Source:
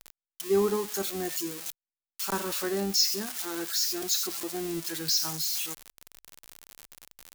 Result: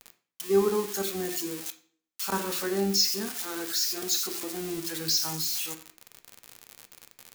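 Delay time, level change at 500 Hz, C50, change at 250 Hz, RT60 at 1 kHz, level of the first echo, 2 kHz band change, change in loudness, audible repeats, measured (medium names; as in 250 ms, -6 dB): no echo, +1.5 dB, 13.5 dB, +1.5 dB, 0.45 s, no echo, +1.0 dB, +0.5 dB, no echo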